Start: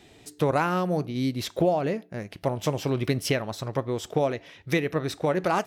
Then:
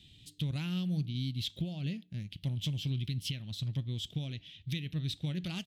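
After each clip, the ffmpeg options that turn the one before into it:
-af "firequalizer=gain_entry='entry(140,0);entry(430,-26);entry(660,-28);entry(1100,-30);entry(3200,4);entry(5500,-10)':delay=0.05:min_phase=1,alimiter=level_in=1.06:limit=0.0631:level=0:latency=1:release=232,volume=0.944"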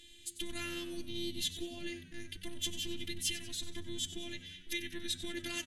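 -filter_complex "[0:a]superequalizer=8b=0.562:11b=2.82:15b=3.16:16b=3.55,afftfilt=real='hypot(re,im)*cos(PI*b)':imag='0':win_size=512:overlap=0.75,asplit=6[s0][s1][s2][s3][s4][s5];[s1]adelay=94,afreqshift=-92,volume=0.224[s6];[s2]adelay=188,afreqshift=-184,volume=0.11[s7];[s3]adelay=282,afreqshift=-276,volume=0.0537[s8];[s4]adelay=376,afreqshift=-368,volume=0.0263[s9];[s5]adelay=470,afreqshift=-460,volume=0.0129[s10];[s0][s6][s7][s8][s9][s10]amix=inputs=6:normalize=0,volume=1.78"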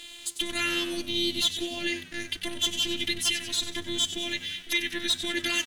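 -filter_complex "[0:a]asplit=2[s0][s1];[s1]alimiter=level_in=1.06:limit=0.0631:level=0:latency=1:release=404,volume=0.944,volume=0.944[s2];[s0][s2]amix=inputs=2:normalize=0,asplit=2[s3][s4];[s4]highpass=f=720:p=1,volume=4.47,asoftclip=type=tanh:threshold=0.251[s5];[s3][s5]amix=inputs=2:normalize=0,lowpass=f=6100:p=1,volume=0.501,aeval=exprs='sgn(val(0))*max(abs(val(0))-0.00188,0)':c=same,volume=1.41"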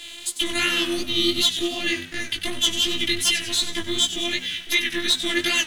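-filter_complex "[0:a]acrossover=split=260|1800|5600[s0][s1][s2][s3];[s0]acrusher=samples=28:mix=1:aa=0.000001[s4];[s4][s1][s2][s3]amix=inputs=4:normalize=0,flanger=delay=15.5:depth=4.8:speed=2.7,volume=2.82"

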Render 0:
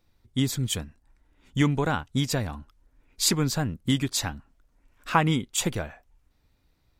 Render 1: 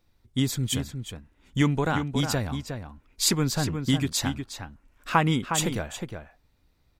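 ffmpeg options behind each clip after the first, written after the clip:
-filter_complex "[0:a]asplit=2[s0][s1];[s1]adelay=361.5,volume=0.447,highshelf=f=4000:g=-8.13[s2];[s0][s2]amix=inputs=2:normalize=0"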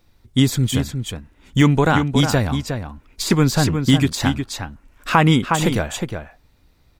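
-af "deesser=0.6,alimiter=level_in=3.35:limit=0.891:release=50:level=0:latency=1,volume=0.891"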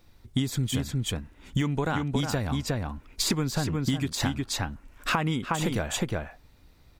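-af "acompressor=threshold=0.0708:ratio=12"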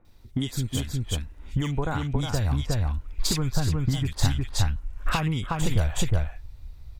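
-filter_complex "[0:a]asubboost=boost=9.5:cutoff=83,acrossover=split=1800[s0][s1];[s1]adelay=50[s2];[s0][s2]amix=inputs=2:normalize=0"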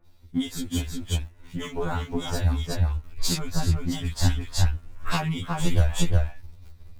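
-filter_complex "[0:a]asplit=2[s0][s1];[s1]aeval=exprs='val(0)*gte(abs(val(0)),0.0178)':c=same,volume=0.316[s2];[s0][s2]amix=inputs=2:normalize=0,afftfilt=real='re*2*eq(mod(b,4),0)':imag='im*2*eq(mod(b,4),0)':win_size=2048:overlap=0.75"

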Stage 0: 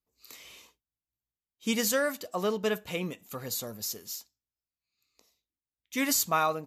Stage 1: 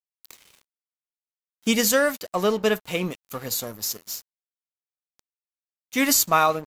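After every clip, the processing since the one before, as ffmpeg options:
-af "aeval=exprs='sgn(val(0))*max(abs(val(0))-0.00447,0)':c=same,volume=2.51"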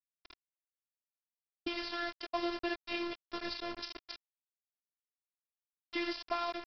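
-af "acompressor=threshold=0.0398:ratio=12,aresample=11025,acrusher=bits=5:mix=0:aa=0.000001,aresample=44100,afftfilt=real='hypot(re,im)*cos(PI*b)':imag='0':win_size=512:overlap=0.75"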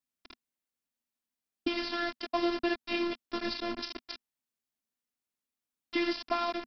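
-af "equalizer=f=240:t=o:w=0.53:g=12.5,volume=1.58"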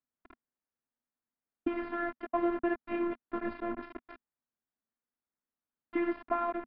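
-af "lowpass=f=1800:w=0.5412,lowpass=f=1800:w=1.3066"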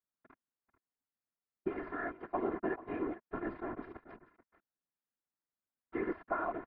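-af "highshelf=f=2300:t=q:w=1.5:g=-6,aecho=1:1:438:0.168,afftfilt=real='hypot(re,im)*cos(2*PI*random(0))':imag='hypot(re,im)*sin(2*PI*random(1))':win_size=512:overlap=0.75,volume=1.12"

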